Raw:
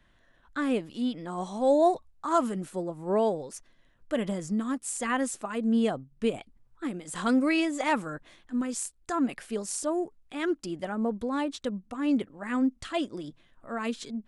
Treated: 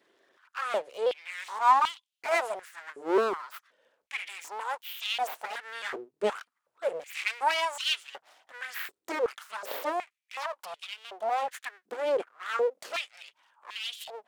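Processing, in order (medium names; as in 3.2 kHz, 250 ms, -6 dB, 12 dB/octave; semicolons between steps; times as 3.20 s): pitch shift switched off and on -1.5 st, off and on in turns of 529 ms; full-wave rectifier; step-sequenced high-pass 2.7 Hz 390–3100 Hz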